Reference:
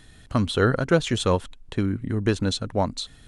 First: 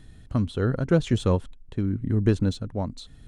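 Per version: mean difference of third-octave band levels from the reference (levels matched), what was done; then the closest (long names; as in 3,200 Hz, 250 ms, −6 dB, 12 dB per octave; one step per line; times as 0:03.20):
5.0 dB: de-essing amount 55%
low-shelf EQ 470 Hz +12 dB
amplitude tremolo 0.89 Hz, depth 47%
level −7.5 dB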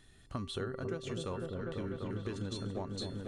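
7.5 dB: tuned comb filter 390 Hz, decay 0.34 s, harmonics odd, mix 80%
echo whose low-pass opens from repeat to repeat 248 ms, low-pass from 400 Hz, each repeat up 1 octave, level −3 dB
downward compressor, threshold −37 dBFS, peak gain reduction 12 dB
level +2 dB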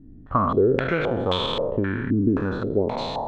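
11.0 dB: peak hold with a decay on every bin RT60 1.43 s
downward compressor 4 to 1, threshold −22 dBFS, peak gain reduction 9 dB
low-pass on a step sequencer 3.8 Hz 280–3,400 Hz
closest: first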